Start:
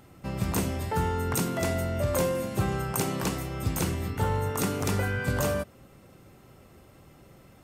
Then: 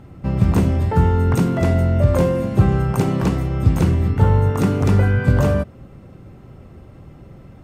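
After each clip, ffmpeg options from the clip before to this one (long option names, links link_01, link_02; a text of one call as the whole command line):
ffmpeg -i in.wav -af "lowpass=frequency=2100:poles=1,lowshelf=frequency=260:gain=10,volume=6dB" out.wav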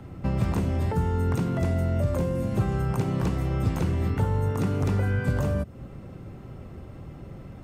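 ffmpeg -i in.wav -filter_complex "[0:a]acrossover=split=130|370|5600[link_01][link_02][link_03][link_04];[link_01]acompressor=threshold=-27dB:ratio=4[link_05];[link_02]acompressor=threshold=-31dB:ratio=4[link_06];[link_03]acompressor=threshold=-34dB:ratio=4[link_07];[link_04]acompressor=threshold=-51dB:ratio=4[link_08];[link_05][link_06][link_07][link_08]amix=inputs=4:normalize=0" out.wav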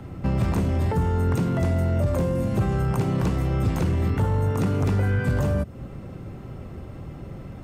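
ffmpeg -i in.wav -af "asoftclip=type=tanh:threshold=-18dB,volume=4dB" out.wav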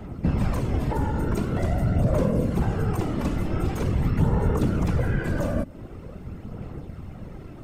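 ffmpeg -i in.wav -af "afftfilt=real='hypot(re,im)*cos(2*PI*random(0))':imag='hypot(re,im)*sin(2*PI*random(1))':win_size=512:overlap=0.75,aphaser=in_gain=1:out_gain=1:delay=3.5:decay=0.32:speed=0.45:type=sinusoidal,volume=4dB" out.wav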